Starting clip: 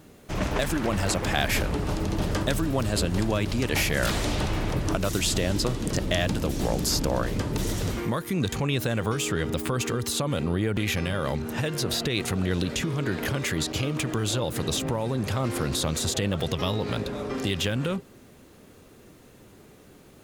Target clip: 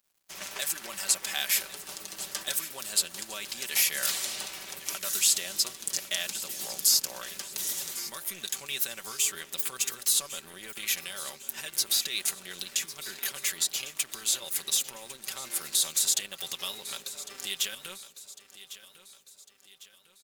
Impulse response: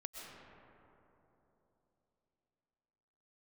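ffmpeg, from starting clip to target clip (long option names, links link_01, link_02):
-af "aderivative,aecho=1:1:5.2:0.56,aeval=exprs='sgn(val(0))*max(abs(val(0))-0.00224,0)':channel_layout=same,aecho=1:1:1102|2204|3306|4408:0.178|0.0818|0.0376|0.0173,volume=5dB"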